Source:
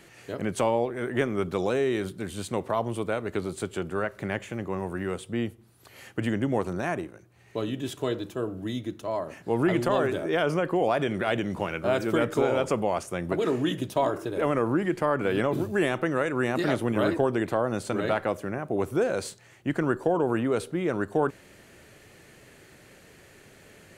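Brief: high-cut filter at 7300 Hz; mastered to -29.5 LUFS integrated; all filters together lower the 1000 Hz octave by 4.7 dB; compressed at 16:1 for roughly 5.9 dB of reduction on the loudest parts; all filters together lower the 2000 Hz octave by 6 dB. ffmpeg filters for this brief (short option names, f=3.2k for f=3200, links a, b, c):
-af "lowpass=7.3k,equalizer=f=1k:t=o:g=-5,equalizer=f=2k:t=o:g=-6,acompressor=threshold=-26dB:ratio=16,volume=3.5dB"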